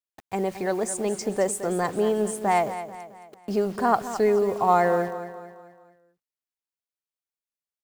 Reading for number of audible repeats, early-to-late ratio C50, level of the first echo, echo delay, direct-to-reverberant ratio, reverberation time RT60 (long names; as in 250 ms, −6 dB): 4, no reverb audible, −12.0 dB, 219 ms, no reverb audible, no reverb audible